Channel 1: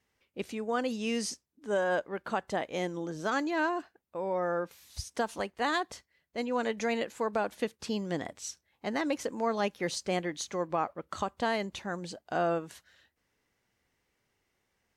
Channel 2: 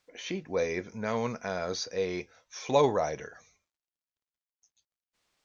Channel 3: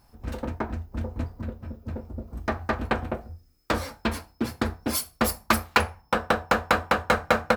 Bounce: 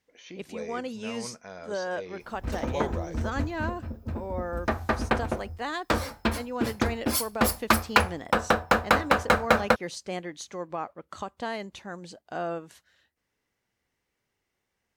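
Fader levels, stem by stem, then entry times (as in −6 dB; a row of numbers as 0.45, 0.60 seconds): −3.0, −9.5, +0.5 decibels; 0.00, 0.00, 2.20 seconds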